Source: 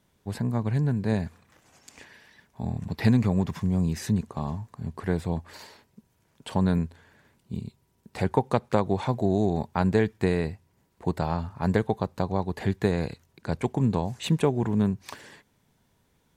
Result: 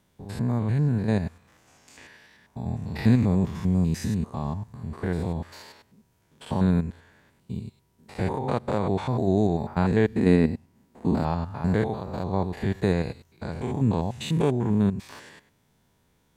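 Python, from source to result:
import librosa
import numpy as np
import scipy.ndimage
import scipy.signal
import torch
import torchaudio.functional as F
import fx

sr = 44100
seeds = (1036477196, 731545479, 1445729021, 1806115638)

y = fx.spec_steps(x, sr, hold_ms=100)
y = fx.peak_eq(y, sr, hz=240.0, db=13.5, octaves=0.66, at=(10.15, 11.23))
y = y * librosa.db_to_amplitude(2.5)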